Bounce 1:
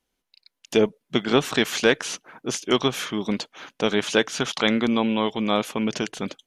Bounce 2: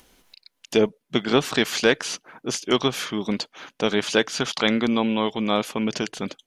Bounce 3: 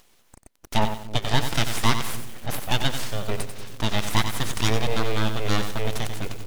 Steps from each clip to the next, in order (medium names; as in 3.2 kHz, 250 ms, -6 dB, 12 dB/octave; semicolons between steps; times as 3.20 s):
dynamic bell 4.7 kHz, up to +6 dB, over -50 dBFS, Q 6.7; upward compressor, threshold -40 dBFS
full-wave rectifier; bucket-brigade echo 294 ms, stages 1024, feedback 69%, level -16 dB; bit-crushed delay 92 ms, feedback 35%, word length 6-bit, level -8.5 dB